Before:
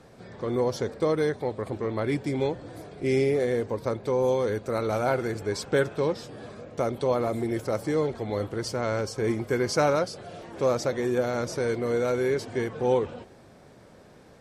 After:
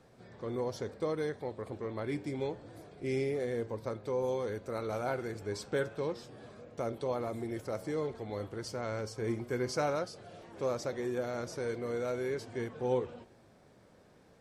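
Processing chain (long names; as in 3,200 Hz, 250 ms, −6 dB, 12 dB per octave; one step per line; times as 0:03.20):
flanger 0.31 Hz, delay 7.8 ms, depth 3.6 ms, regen +86%
level −4.5 dB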